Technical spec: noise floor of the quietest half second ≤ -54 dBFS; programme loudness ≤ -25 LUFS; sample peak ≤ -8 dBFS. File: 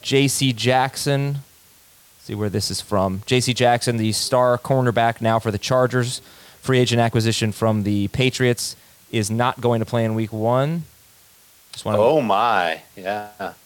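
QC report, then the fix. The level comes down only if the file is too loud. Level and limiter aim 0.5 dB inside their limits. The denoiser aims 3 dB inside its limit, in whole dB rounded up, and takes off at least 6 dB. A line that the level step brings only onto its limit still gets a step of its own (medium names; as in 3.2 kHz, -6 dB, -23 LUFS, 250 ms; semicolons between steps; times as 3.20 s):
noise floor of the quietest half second -52 dBFS: fail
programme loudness -20.0 LUFS: fail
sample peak -6.0 dBFS: fail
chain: trim -5.5 dB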